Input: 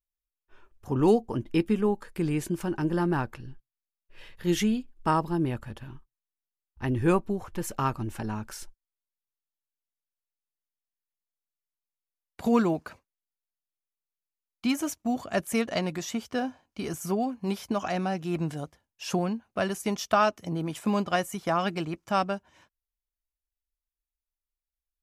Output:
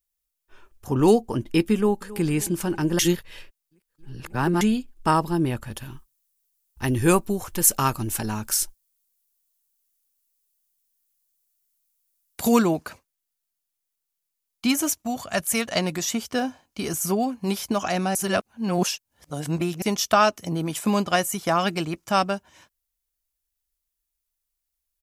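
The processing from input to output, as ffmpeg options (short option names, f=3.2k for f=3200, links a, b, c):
-filter_complex "[0:a]asplit=2[a][b];[b]afade=t=in:st=1.74:d=0.01,afade=t=out:st=2.26:d=0.01,aecho=0:1:270|540|810|1080|1350|1620:0.133352|0.0800113|0.0480068|0.0288041|0.0172824|0.0103695[c];[a][c]amix=inputs=2:normalize=0,asettb=1/sr,asplit=3[d][e][f];[d]atrim=end=5.714[g];[e]atrim=start=5.71:end=12.59,asetpts=PTS-STARTPTS,afade=t=in:d=0.004:c=qsin,afade=t=out:st=6.876:d=0.004:c=qsin,highshelf=f=5k:g=10.5[h];[f]atrim=start=12.586[i];[g][h]acrossfade=d=0.004:c1=hsin:c2=qsin[j];[j][i]acrossfade=d=0.004:c1=qsin:c2=hsin,asettb=1/sr,asplit=3[k][l][m];[k]atrim=end=15.024[n];[l]atrim=start=15.02:end=15.76,asetpts=PTS-STARTPTS,afade=t=in:d=0.004:c=qsin,afade=t=out:st=0.736:d=0.004:c=qsin,equalizer=f=330:w=1.2:g=-8.5[o];[m]atrim=start=15.756[p];[n][o]acrossfade=d=0.004:c1=hsin:c2=qsin[q];[q][p]acrossfade=d=0.004:c1=qsin:c2=hsin,asplit=5[r][s][t][u][v];[r]atrim=end=2.992[w];[s]atrim=start=2.988:end=4.612,asetpts=PTS-STARTPTS,areverse[x];[t]atrim=start=4.608:end=18.152[y];[u]atrim=start=18.148:end=19.822,asetpts=PTS-STARTPTS,areverse[z];[v]atrim=start=19.818[aa];[w][x]acrossfade=d=0.004:c1=hsin:c2=hsin[ab];[ab][y]acrossfade=d=0.004:c1=hsin:c2=hsin[ac];[ac][z]acrossfade=d=0.004:c1=hsin:c2=hsin[ad];[ad][aa]acrossfade=d=0.004:c1=hsin:c2=hsin,highshelf=f=4.5k:g=10.5,volume=4dB"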